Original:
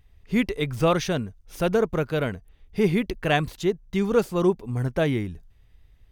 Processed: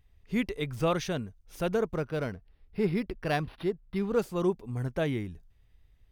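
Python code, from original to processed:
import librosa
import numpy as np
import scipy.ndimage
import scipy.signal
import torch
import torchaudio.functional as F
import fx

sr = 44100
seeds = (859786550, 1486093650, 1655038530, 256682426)

y = fx.resample_linear(x, sr, factor=6, at=(1.95, 4.19))
y = F.gain(torch.from_numpy(y), -6.5).numpy()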